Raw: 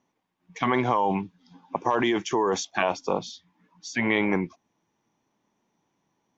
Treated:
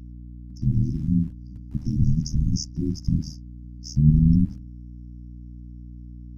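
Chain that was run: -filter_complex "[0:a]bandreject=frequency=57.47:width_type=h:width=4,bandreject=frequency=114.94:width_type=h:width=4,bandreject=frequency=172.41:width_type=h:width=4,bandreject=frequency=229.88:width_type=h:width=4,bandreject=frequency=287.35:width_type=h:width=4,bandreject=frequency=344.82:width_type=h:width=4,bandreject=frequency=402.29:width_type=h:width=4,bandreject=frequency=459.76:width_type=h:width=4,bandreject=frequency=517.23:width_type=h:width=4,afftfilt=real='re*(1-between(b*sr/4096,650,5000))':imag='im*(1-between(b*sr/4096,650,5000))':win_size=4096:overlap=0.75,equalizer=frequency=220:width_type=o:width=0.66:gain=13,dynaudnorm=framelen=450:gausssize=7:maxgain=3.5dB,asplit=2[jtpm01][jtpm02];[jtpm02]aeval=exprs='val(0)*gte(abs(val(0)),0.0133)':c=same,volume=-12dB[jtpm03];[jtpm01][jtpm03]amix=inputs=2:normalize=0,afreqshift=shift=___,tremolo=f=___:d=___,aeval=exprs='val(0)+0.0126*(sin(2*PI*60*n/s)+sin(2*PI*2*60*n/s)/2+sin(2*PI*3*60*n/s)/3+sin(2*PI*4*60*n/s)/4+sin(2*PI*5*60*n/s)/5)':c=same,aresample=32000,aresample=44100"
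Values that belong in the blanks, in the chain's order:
-370, 78, 0.889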